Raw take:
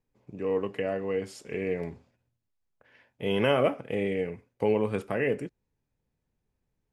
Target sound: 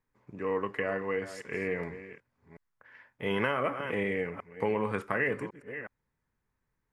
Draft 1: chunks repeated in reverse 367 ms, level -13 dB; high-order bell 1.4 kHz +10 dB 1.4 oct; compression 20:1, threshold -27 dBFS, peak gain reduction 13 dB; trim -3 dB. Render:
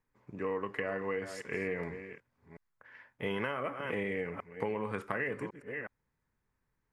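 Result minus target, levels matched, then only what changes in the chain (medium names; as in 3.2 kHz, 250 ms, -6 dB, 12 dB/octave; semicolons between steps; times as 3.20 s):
compression: peak gain reduction +6 dB
change: compression 20:1, threshold -20.5 dBFS, peak gain reduction 7 dB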